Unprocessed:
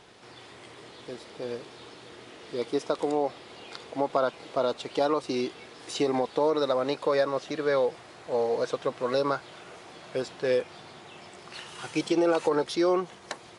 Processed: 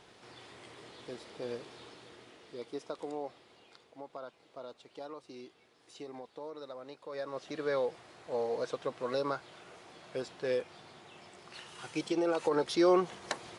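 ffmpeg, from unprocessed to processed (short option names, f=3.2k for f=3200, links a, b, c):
-af "volume=15.5dB,afade=t=out:st=1.77:d=0.84:silence=0.398107,afade=t=out:st=3.28:d=0.65:silence=0.446684,afade=t=in:st=7.08:d=0.51:silence=0.237137,afade=t=in:st=12.36:d=0.71:silence=0.421697"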